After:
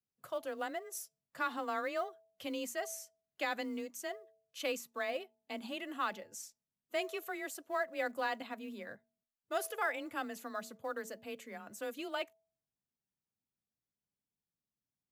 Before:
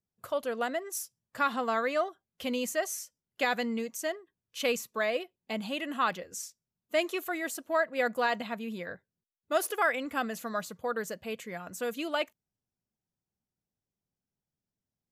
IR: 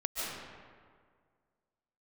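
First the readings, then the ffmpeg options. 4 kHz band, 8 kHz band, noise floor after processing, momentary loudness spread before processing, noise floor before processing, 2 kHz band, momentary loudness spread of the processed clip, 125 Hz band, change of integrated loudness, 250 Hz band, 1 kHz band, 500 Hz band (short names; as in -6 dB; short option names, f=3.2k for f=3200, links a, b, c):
-7.5 dB, -7.5 dB, under -85 dBFS, 11 LU, under -85 dBFS, -7.0 dB, 11 LU, under -10 dB, -7.5 dB, -8.0 dB, -7.0 dB, -8.0 dB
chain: -af "bandreject=f=210.4:t=h:w=4,bandreject=f=420.8:t=h:w=4,bandreject=f=631.2:t=h:w=4,bandreject=f=841.6:t=h:w=4,acrusher=bits=8:mode=log:mix=0:aa=0.000001,afreqshift=23,volume=-7.5dB"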